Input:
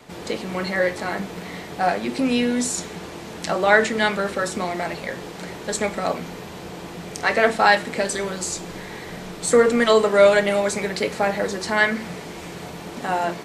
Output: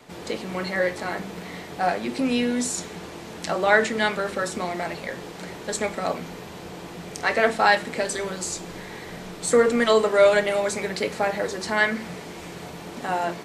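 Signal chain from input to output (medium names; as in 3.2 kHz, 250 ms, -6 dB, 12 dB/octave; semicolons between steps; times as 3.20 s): hum notches 50/100/150/200 Hz; trim -2.5 dB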